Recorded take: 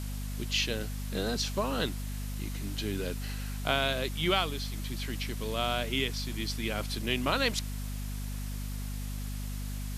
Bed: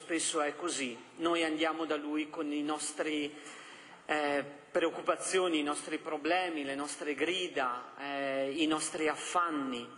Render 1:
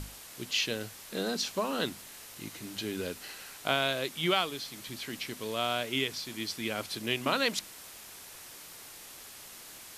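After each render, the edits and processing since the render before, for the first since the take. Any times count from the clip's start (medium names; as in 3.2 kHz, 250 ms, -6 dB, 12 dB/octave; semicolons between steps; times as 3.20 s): hum notches 50/100/150/200/250 Hz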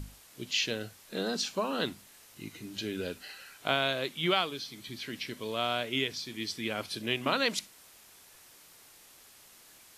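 noise print and reduce 8 dB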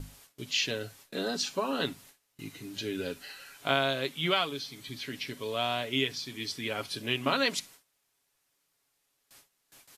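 gate with hold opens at -44 dBFS; comb 7.2 ms, depth 44%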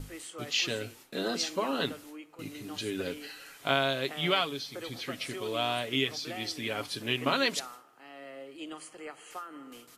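add bed -11.5 dB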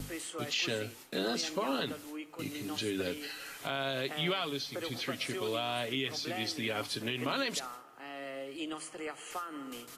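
peak limiter -21.5 dBFS, peak gain reduction 11.5 dB; three bands compressed up and down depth 40%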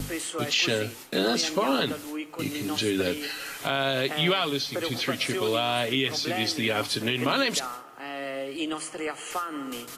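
trim +8.5 dB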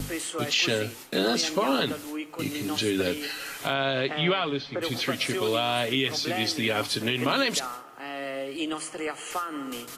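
3.73–4.81 s: low-pass 4.6 kHz -> 2.3 kHz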